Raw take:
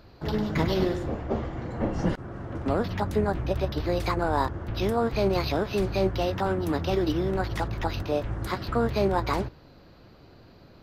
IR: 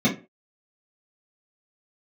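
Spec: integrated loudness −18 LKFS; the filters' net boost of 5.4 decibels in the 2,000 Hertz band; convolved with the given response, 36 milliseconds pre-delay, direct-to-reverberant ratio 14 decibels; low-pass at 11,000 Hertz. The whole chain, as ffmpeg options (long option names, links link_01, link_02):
-filter_complex "[0:a]lowpass=11000,equalizer=frequency=2000:width_type=o:gain=7,asplit=2[link_01][link_02];[1:a]atrim=start_sample=2205,adelay=36[link_03];[link_02][link_03]afir=irnorm=-1:irlink=0,volume=-28.5dB[link_04];[link_01][link_04]amix=inputs=2:normalize=0,volume=8dB"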